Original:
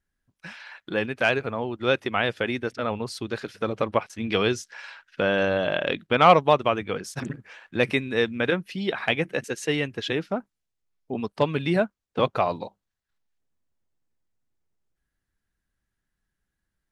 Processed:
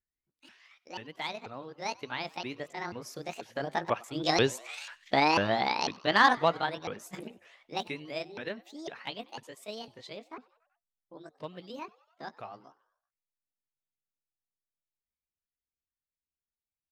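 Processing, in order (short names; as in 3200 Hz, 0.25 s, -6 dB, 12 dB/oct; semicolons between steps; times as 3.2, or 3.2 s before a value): repeated pitch sweeps +9.5 st, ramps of 0.494 s; Doppler pass-by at 4.94, 5 m/s, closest 4.1 m; frequency-shifting echo 95 ms, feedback 63%, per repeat +110 Hz, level -24 dB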